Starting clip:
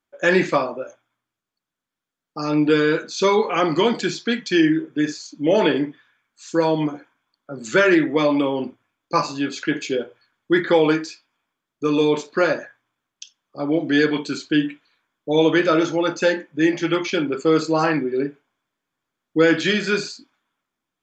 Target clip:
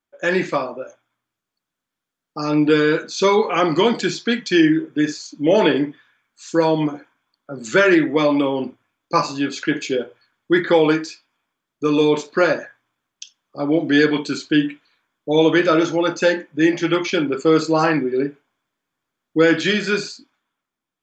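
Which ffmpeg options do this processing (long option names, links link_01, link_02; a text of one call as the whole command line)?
ffmpeg -i in.wav -af "dynaudnorm=framelen=170:gausssize=11:maxgain=8dB,volume=-2.5dB" out.wav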